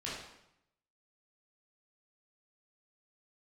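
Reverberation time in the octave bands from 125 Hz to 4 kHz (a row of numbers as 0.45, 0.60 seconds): 0.95, 0.90, 0.80, 0.80, 0.75, 0.70 seconds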